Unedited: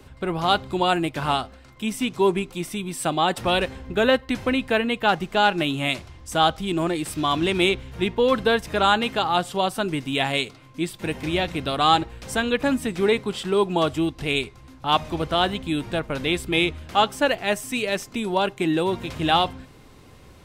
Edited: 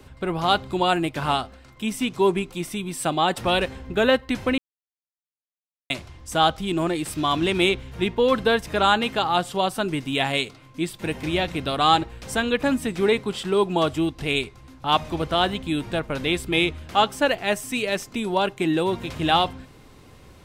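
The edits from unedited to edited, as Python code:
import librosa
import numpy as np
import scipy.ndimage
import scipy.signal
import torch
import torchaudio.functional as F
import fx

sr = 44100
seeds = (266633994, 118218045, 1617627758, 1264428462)

y = fx.edit(x, sr, fx.silence(start_s=4.58, length_s=1.32), tone=tone)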